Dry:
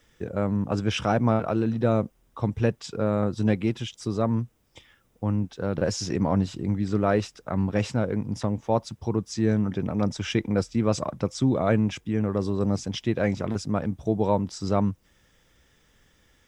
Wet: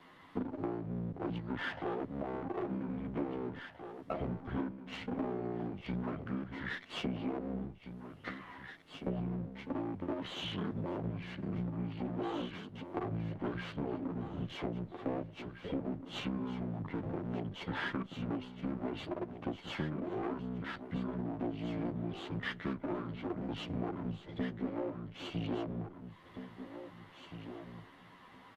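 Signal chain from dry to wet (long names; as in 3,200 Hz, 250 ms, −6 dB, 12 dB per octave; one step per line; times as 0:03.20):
lower of the sound and its delayed copy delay 6.5 ms
three-way crossover with the lows and the highs turned down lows −20 dB, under 230 Hz, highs −17 dB, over 5,700 Hz
downward compressor 16 to 1, threshold −43 dBFS, peak gain reduction 22 dB
on a send: repeating echo 1,139 ms, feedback 17%, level −10 dB
on the sum: wrong playback speed 78 rpm record played at 45 rpm
level +8.5 dB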